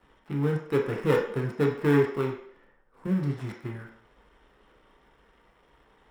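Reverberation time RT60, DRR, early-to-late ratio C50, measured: 0.60 s, 0.5 dB, 6.0 dB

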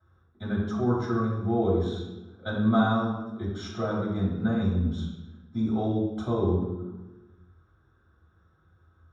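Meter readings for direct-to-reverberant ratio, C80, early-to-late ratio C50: -11.5 dB, 4.5 dB, 1.5 dB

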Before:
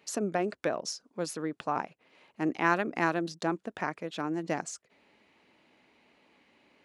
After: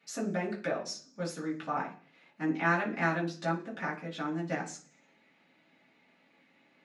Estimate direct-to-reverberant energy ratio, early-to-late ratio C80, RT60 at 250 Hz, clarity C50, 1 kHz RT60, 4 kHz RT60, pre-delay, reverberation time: -8.5 dB, 15.5 dB, 0.60 s, 10.5 dB, 0.40 s, 0.50 s, 3 ms, 0.45 s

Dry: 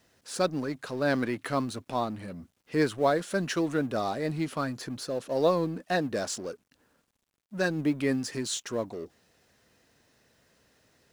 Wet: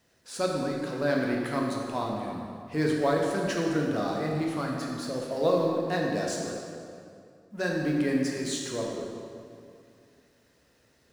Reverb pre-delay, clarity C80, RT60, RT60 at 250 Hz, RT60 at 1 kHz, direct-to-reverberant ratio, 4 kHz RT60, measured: 12 ms, 2.0 dB, 2.4 s, 2.6 s, 2.3 s, -1.5 dB, 1.7 s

